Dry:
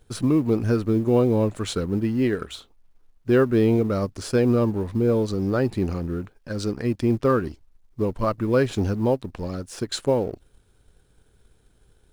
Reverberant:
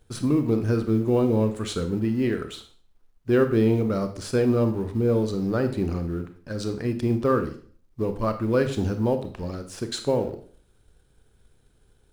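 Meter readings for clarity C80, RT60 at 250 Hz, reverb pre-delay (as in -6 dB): 15.0 dB, 0.55 s, 26 ms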